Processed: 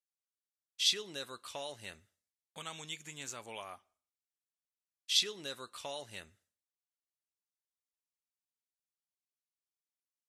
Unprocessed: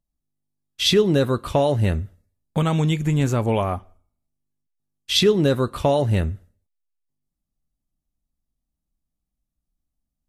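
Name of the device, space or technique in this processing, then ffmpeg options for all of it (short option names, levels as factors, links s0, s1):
piezo pickup straight into a mixer: -af "lowpass=7200,aderivative,volume=0.708"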